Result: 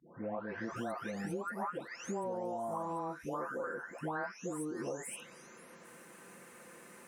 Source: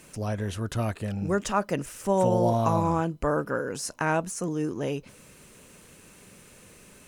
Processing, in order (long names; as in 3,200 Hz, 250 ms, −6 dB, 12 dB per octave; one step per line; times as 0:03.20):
every frequency bin delayed by itself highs late, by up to 762 ms
Bessel high-pass filter 330 Hz, order 2
high shelf with overshoot 2,300 Hz −8 dB, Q 1.5
downward compressor 10 to 1, threshold −39 dBFS, peak gain reduction 17.5 dB
level +3.5 dB